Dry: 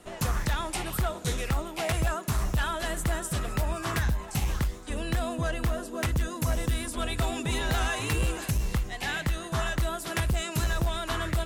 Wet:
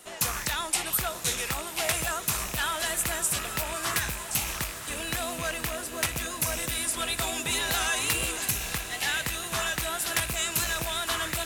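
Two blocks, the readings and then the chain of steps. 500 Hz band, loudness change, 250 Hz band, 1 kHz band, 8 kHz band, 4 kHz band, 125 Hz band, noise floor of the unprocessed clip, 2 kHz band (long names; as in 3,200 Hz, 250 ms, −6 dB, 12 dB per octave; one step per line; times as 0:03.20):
−2.0 dB, +2.0 dB, −6.0 dB, +0.5 dB, +9.5 dB, +6.0 dB, −10.0 dB, −41 dBFS, +3.5 dB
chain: loose part that buzzes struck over −29 dBFS, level −30 dBFS
spectral tilt +3 dB per octave
tape wow and flutter 29 cents
feedback delay with all-pass diffusion 941 ms, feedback 63%, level −12 dB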